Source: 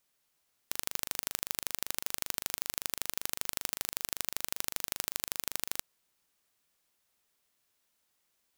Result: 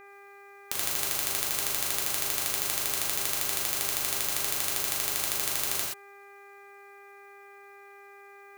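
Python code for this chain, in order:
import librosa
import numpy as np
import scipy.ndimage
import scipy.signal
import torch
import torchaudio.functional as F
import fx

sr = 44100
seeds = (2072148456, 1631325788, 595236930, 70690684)

y = fx.rev_gated(x, sr, seeds[0], gate_ms=150, shape='flat', drr_db=-5.0)
y = fx.dmg_buzz(y, sr, base_hz=400.0, harmonics=6, level_db=-52.0, tilt_db=-2, odd_only=False)
y = F.gain(torch.from_numpy(y), 1.5).numpy()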